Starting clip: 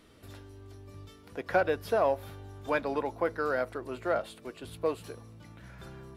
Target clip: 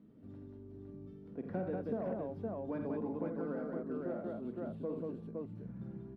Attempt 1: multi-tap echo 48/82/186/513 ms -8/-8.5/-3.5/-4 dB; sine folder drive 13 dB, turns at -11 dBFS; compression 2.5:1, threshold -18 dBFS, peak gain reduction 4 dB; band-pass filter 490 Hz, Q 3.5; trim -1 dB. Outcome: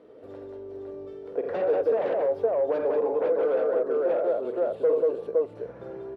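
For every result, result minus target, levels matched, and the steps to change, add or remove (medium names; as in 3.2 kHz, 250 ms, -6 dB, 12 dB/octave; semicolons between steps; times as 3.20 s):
250 Hz band -14.0 dB; sine folder: distortion +14 dB
change: band-pass filter 200 Hz, Q 3.5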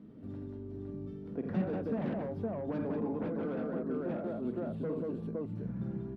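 sine folder: distortion +14 dB
change: sine folder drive 5 dB, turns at -11 dBFS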